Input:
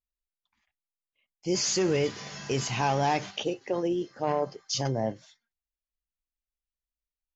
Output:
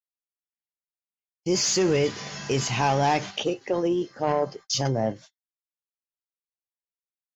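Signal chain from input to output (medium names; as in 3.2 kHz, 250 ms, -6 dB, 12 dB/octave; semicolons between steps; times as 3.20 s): gate -47 dBFS, range -37 dB; in parallel at -9.5 dB: saturation -25 dBFS, distortion -12 dB; on the sum: trim +2 dB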